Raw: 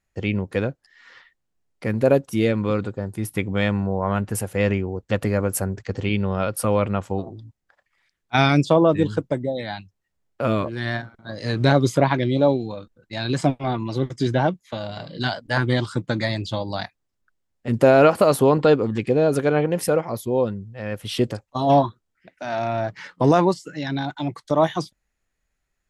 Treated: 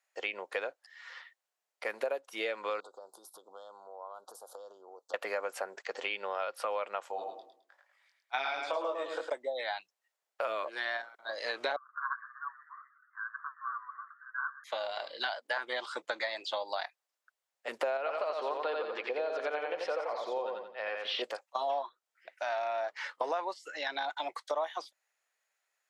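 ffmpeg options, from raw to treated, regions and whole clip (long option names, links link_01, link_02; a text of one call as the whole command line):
ffmpeg -i in.wav -filter_complex "[0:a]asettb=1/sr,asplit=3[link_01][link_02][link_03];[link_01]atrim=end=2.804[link_04];[link_02]atrim=start=2.8:end=5.14,asetpts=PTS-STARTPTS,afade=type=in:duration=0.004:curve=qsin,afade=type=out:start_time=2.336:duration=0.004:curve=qsin,equalizer=frequency=70:width_type=o:width=2.6:gain=-12.5,acompressor=threshold=-36dB:ratio=16:attack=3.2:release=140:knee=1:detection=peak,asuperstop=centerf=2200:order=8:qfactor=0.9[link_05];[link_03]atrim=start=5.136[link_06];[link_04][link_05]acrossfade=duration=0.004:curve1=hsin:curve2=qsin[link_07];[link_07][link_06]acrossfade=duration=0.004:curve1=qsin:curve2=hsin,asettb=1/sr,asplit=3[link_08][link_09][link_10];[link_08]atrim=end=7.114[link_11];[link_09]atrim=start=7.11:end=9.3,asetpts=PTS-STARTPTS,afade=type=in:duration=0.004:curve=qsin,afade=type=out:start_time=2.186:duration=0.004:curve=qsin,flanger=delay=19:depth=4.1:speed=1.3,aecho=1:1:106|212|318|424:0.501|0.15|0.0451|0.0135,atrim=end_sample=96579[link_12];[link_10]atrim=start=9.296[link_13];[link_11][link_12]acrossfade=duration=0.004:curve1=hsin:curve2=qsin[link_14];[link_14][link_13]acrossfade=duration=0.004:curve1=qsin:curve2=hsin,asettb=1/sr,asplit=3[link_15][link_16][link_17];[link_15]atrim=end=11.764[link_18];[link_16]atrim=start=11.76:end=14.64,asetpts=PTS-STARTPTS,afade=type=in:duration=0.004:curve=qsin,afade=type=out:start_time=2.876:duration=0.004:curve=qsin,asuperpass=centerf=1300:order=12:qfactor=2.3,asplit=7[link_19][link_20][link_21][link_22][link_23][link_24][link_25];[link_20]adelay=123,afreqshift=61,volume=-18.5dB[link_26];[link_21]adelay=246,afreqshift=122,volume=-22.2dB[link_27];[link_22]adelay=369,afreqshift=183,volume=-26dB[link_28];[link_23]adelay=492,afreqshift=244,volume=-29.7dB[link_29];[link_24]adelay=615,afreqshift=305,volume=-33.5dB[link_30];[link_25]adelay=738,afreqshift=366,volume=-37.2dB[link_31];[link_19][link_26][link_27][link_28][link_29][link_30][link_31]amix=inputs=7:normalize=0,atrim=end_sample=127008[link_32];[link_17]atrim=start=14.636[link_33];[link_18][link_32]acrossfade=duration=0.004:curve1=hsin:curve2=qsin[link_34];[link_34][link_33]acrossfade=duration=0.004:curve1=qsin:curve2=hsin,asettb=1/sr,asplit=3[link_35][link_36][link_37];[link_35]atrim=end=17.974[link_38];[link_36]atrim=start=17.97:end=21.22,asetpts=PTS-STARTPTS,afade=type=in:duration=0.004:curve=qsin,afade=type=out:start_time=3.246:duration=0.004:curve=qsin,lowpass=frequency=4700:width=0.5412,lowpass=frequency=4700:width=1.3066,acompressor=threshold=-24dB:ratio=1.5:attack=3.2:release=140:knee=1:detection=peak,aecho=1:1:88|176|264|352|440:0.631|0.233|0.0864|0.032|0.0118,atrim=end_sample=143325[link_39];[link_37]atrim=start=21.216[link_40];[link_38][link_39]acrossfade=duration=0.004:curve1=hsin:curve2=qsin[link_41];[link_41][link_40]acrossfade=duration=0.004:curve1=qsin:curve2=hsin,acrossover=split=4500[link_42][link_43];[link_43]acompressor=threshold=-52dB:ratio=4:attack=1:release=60[link_44];[link_42][link_44]amix=inputs=2:normalize=0,highpass=frequency=570:width=0.5412,highpass=frequency=570:width=1.3066,acompressor=threshold=-31dB:ratio=6" out.wav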